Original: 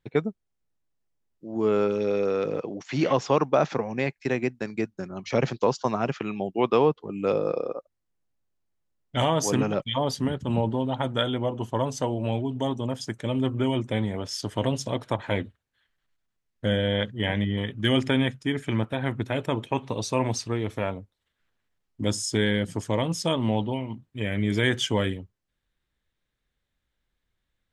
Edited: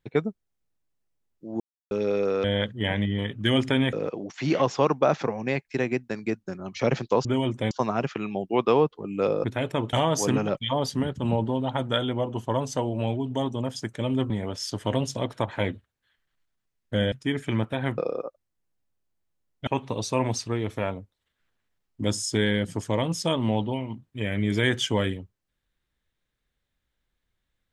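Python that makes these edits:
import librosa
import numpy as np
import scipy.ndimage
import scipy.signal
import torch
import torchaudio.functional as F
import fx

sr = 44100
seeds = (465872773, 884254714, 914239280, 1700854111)

y = fx.edit(x, sr, fx.silence(start_s=1.6, length_s=0.31),
    fx.swap(start_s=7.49, length_s=1.69, other_s=19.18, other_length_s=0.49),
    fx.move(start_s=13.55, length_s=0.46, to_s=5.76),
    fx.move(start_s=16.83, length_s=1.49, to_s=2.44), tone=tone)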